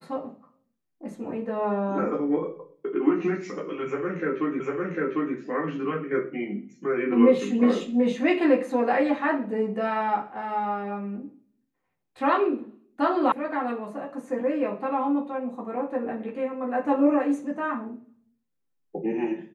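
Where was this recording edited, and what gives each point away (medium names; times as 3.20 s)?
4.60 s: repeat of the last 0.75 s
13.32 s: sound stops dead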